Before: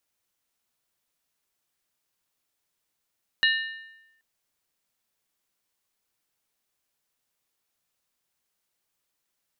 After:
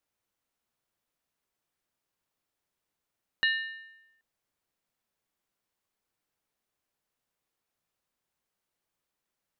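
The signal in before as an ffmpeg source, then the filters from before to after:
-f lavfi -i "aevalsrc='0.126*pow(10,-3*t/0.96)*sin(2*PI*1800*t)+0.0841*pow(10,-3*t/0.76)*sin(2*PI*2869.2*t)+0.0562*pow(10,-3*t/0.657)*sin(2*PI*3844.8*t)+0.0376*pow(10,-3*t/0.634)*sin(2*PI*4132.8*t)':duration=0.78:sample_rate=44100"
-af "highshelf=frequency=2300:gain=-8.5"

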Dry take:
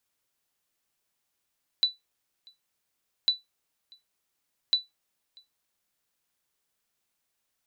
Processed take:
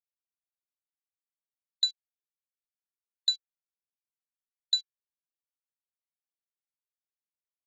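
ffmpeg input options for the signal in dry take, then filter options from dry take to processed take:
-f lavfi -i "aevalsrc='0.2*(sin(2*PI*3970*mod(t,1.45))*exp(-6.91*mod(t,1.45)/0.17)+0.0335*sin(2*PI*3970*max(mod(t,1.45)-0.64,0))*exp(-6.91*max(mod(t,1.45)-0.64,0)/0.17))':duration=4.35:sample_rate=44100"
-af "afftfilt=real='re*gte(hypot(re,im),0.0501)':imag='im*gte(hypot(re,im),0.0501)':win_size=1024:overlap=0.75,afwtdn=0.00794"

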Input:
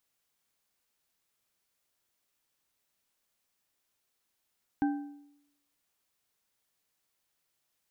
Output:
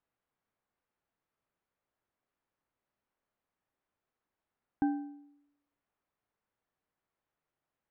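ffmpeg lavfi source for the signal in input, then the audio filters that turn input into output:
-f lavfi -i "aevalsrc='0.0708*pow(10,-3*t/0.8)*sin(2*PI*288*t)+0.0282*pow(10,-3*t/0.59)*sin(2*PI*794*t)+0.0112*pow(10,-3*t/0.482)*sin(2*PI*1556.4*t)':duration=1.55:sample_rate=44100"
-af "lowpass=1500"

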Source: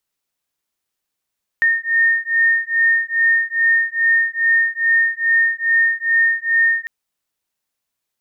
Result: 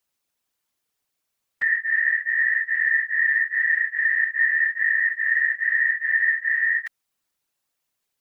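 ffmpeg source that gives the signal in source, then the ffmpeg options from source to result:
-f lavfi -i "aevalsrc='0.15*(sin(2*PI*1830*t)+sin(2*PI*1832.4*t))':duration=5.25:sample_rate=44100"
-filter_complex "[0:a]asplit=2[link_01][link_02];[link_02]acompressor=threshold=-26dB:ratio=8,volume=1dB[link_03];[link_01][link_03]amix=inputs=2:normalize=0,alimiter=limit=-11.5dB:level=0:latency=1:release=16,afftfilt=real='hypot(re,im)*cos(2*PI*random(0))':imag='hypot(re,im)*sin(2*PI*random(1))':win_size=512:overlap=0.75"

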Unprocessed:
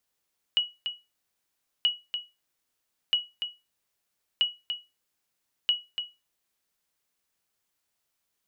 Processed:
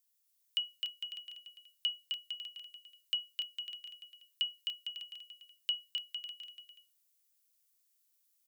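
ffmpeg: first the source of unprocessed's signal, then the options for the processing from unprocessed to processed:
-f lavfi -i "aevalsrc='0.168*(sin(2*PI*2920*mod(t,1.28))*exp(-6.91*mod(t,1.28)/0.24)+0.398*sin(2*PI*2920*max(mod(t,1.28)-0.29,0))*exp(-6.91*max(mod(t,1.28)-0.29,0)/0.24))':duration=6.4:sample_rate=44100"
-filter_complex "[0:a]aderivative,asplit=2[link_01][link_02];[link_02]aecho=0:1:260|455|601.2|710.9|793.2:0.631|0.398|0.251|0.158|0.1[link_03];[link_01][link_03]amix=inputs=2:normalize=0"

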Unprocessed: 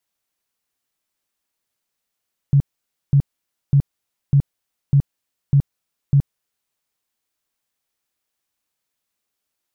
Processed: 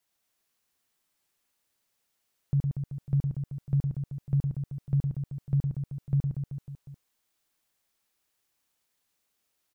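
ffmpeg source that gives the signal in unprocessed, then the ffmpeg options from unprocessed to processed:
-f lavfi -i "aevalsrc='0.335*sin(2*PI*140*mod(t,0.6))*lt(mod(t,0.6),10/140)':duration=4.2:sample_rate=44100"
-filter_complex "[0:a]alimiter=limit=-20dB:level=0:latency=1:release=368,asplit=2[link_01][link_02];[link_02]aecho=0:1:110|236.5|382|549.3|741.7:0.631|0.398|0.251|0.158|0.1[link_03];[link_01][link_03]amix=inputs=2:normalize=0"

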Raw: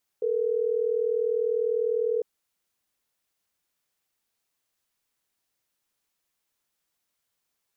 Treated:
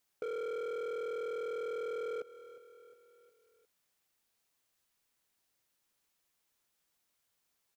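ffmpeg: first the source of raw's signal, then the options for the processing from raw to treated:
-f lavfi -i "aevalsrc='0.0531*(sin(2*PI*440*t)+sin(2*PI*480*t))*clip(min(mod(t,6),2-mod(t,6))/0.005,0,1)':duration=3.12:sample_rate=44100"
-af "asoftclip=type=hard:threshold=-31dB,aecho=1:1:358|716|1074|1432:0.1|0.05|0.025|0.0125,acompressor=threshold=-38dB:ratio=4"

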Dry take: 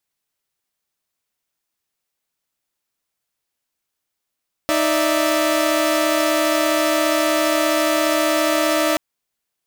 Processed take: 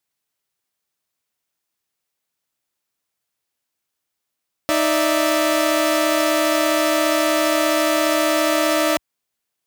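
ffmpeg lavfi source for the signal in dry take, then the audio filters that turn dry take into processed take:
-f lavfi -i "aevalsrc='0.126*((2*mod(311.13*t,1)-1)+(2*mod(587.33*t,1)-1)+(2*mod(659.26*t,1)-1))':duration=4.28:sample_rate=44100"
-af "highpass=52"

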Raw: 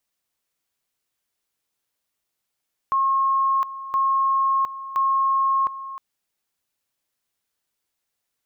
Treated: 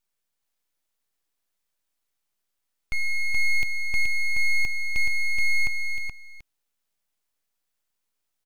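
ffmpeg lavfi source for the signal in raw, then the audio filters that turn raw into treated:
-f lavfi -i "aevalsrc='pow(10,(-17-14*gte(mod(t,1.02),0.71))/20)*sin(2*PI*1080*t)':duration=3.06:sample_rate=44100"
-filter_complex "[0:a]asuperstop=centerf=640:order=8:qfactor=1,asplit=2[link_01][link_02];[link_02]aecho=0:1:425:0.562[link_03];[link_01][link_03]amix=inputs=2:normalize=0,aeval=exprs='abs(val(0))':channel_layout=same"

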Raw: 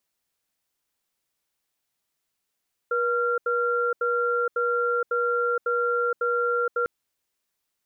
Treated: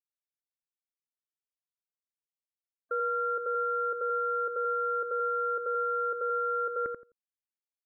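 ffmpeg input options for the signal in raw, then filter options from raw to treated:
-f lavfi -i "aevalsrc='0.0631*(sin(2*PI*480*t)+sin(2*PI*1380*t))*clip(min(mod(t,0.55),0.47-mod(t,0.55))/0.005,0,1)':duration=3.95:sample_rate=44100"
-filter_complex "[0:a]afftfilt=real='re*gte(hypot(re,im),0.00631)':imag='im*gte(hypot(re,im),0.00631)':win_size=1024:overlap=0.75,alimiter=limit=-24dB:level=0:latency=1:release=150,asplit=2[link_01][link_02];[link_02]adelay=86,lowpass=frequency=1100:poles=1,volume=-3.5dB,asplit=2[link_03][link_04];[link_04]adelay=86,lowpass=frequency=1100:poles=1,volume=0.2,asplit=2[link_05][link_06];[link_06]adelay=86,lowpass=frequency=1100:poles=1,volume=0.2[link_07];[link_03][link_05][link_07]amix=inputs=3:normalize=0[link_08];[link_01][link_08]amix=inputs=2:normalize=0"

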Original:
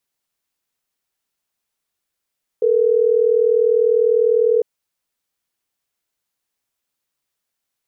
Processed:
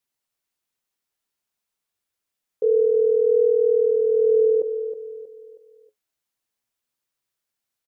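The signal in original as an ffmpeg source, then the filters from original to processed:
-f lavfi -i "aevalsrc='0.178*(sin(2*PI*440*t)+sin(2*PI*480*t))*clip(min(mod(t,6),2-mod(t,6))/0.005,0,1)':duration=3.12:sample_rate=44100"
-filter_complex "[0:a]flanger=delay=8.1:depth=2.1:regen=60:speed=0.28:shape=triangular,asplit=2[link_01][link_02];[link_02]aecho=0:1:318|636|954|1272:0.316|0.123|0.0481|0.0188[link_03];[link_01][link_03]amix=inputs=2:normalize=0"

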